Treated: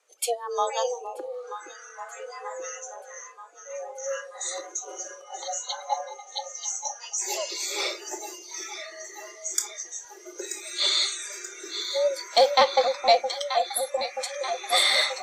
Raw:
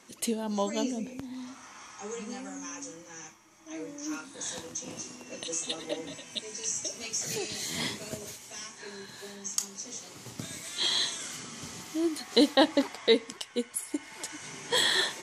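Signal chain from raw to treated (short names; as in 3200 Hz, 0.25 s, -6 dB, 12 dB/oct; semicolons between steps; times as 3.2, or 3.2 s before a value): 5.24–7.18 speaker cabinet 240–6400 Hz, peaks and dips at 610 Hz +5 dB, 2300 Hz -8 dB, 3400 Hz -4 dB; frequency shift +240 Hz; sine folder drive 5 dB, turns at -6 dBFS; echo with dull and thin repeats by turns 0.466 s, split 860 Hz, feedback 82%, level -7 dB; spectral noise reduction 18 dB; gain -4 dB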